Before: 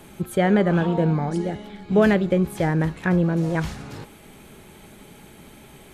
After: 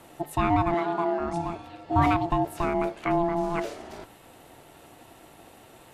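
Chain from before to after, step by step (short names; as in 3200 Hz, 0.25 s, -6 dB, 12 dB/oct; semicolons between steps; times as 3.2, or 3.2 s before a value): ring modulator 510 Hz; 0.74–1.2 HPF 270 Hz 12 dB/oct; gain -2 dB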